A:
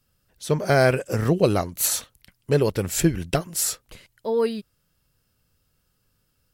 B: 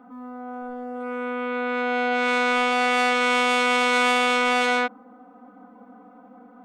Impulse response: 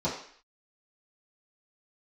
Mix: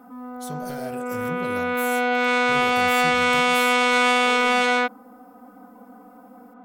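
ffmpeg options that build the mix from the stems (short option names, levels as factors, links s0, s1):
-filter_complex "[0:a]aemphasis=mode=production:type=75fm,acompressor=threshold=0.0562:ratio=2.5,asoftclip=type=tanh:threshold=0.0794,volume=0.335,asplit=2[s0][s1];[s1]volume=0.178[s2];[1:a]volume=1.19[s3];[2:a]atrim=start_sample=2205[s4];[s2][s4]afir=irnorm=-1:irlink=0[s5];[s0][s3][s5]amix=inputs=3:normalize=0"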